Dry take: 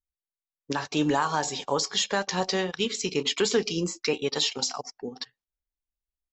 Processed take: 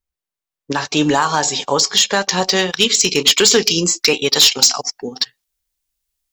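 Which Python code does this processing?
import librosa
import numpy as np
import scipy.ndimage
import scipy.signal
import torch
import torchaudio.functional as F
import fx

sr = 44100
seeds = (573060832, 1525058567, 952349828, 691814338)

y = fx.high_shelf(x, sr, hz=2400.0, db=fx.steps((0.0, -3.0), (0.74, 6.0), (2.55, 12.0)))
y = np.clip(y, -10.0 ** (-13.5 / 20.0), 10.0 ** (-13.5 / 20.0))
y = y * librosa.db_to_amplitude(8.5)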